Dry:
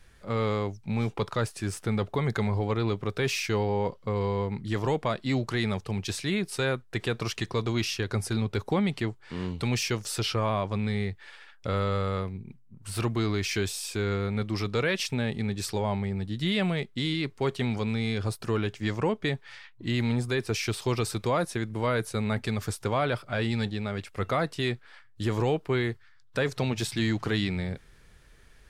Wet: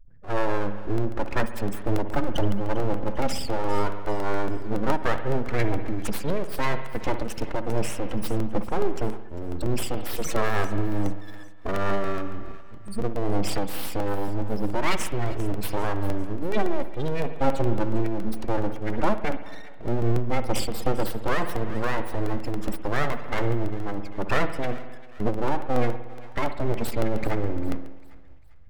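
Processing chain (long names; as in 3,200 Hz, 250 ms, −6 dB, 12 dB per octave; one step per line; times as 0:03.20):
gate on every frequency bin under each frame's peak −10 dB strong
0:17.39–0:17.95: comb filter 7.2 ms, depth 61%
full-wave rectification
feedback echo with a high-pass in the loop 398 ms, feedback 48%, high-pass 800 Hz, level −16.5 dB
spring reverb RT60 1.3 s, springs 59 ms, chirp 55 ms, DRR 9 dB
regular buffer underruns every 0.14 s, samples 64, repeat, from 0:00.98
amplitude modulation by smooth noise, depth 55%
level +9 dB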